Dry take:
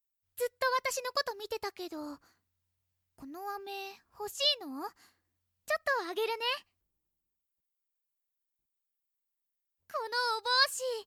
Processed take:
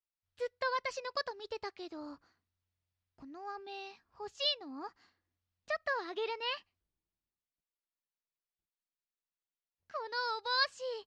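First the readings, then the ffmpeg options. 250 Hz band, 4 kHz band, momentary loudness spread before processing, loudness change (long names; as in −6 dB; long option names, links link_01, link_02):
−4.0 dB, −4.5 dB, 16 LU, −4.5 dB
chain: -af "lowpass=frequency=5200:width=0.5412,lowpass=frequency=5200:width=1.3066,volume=-4dB"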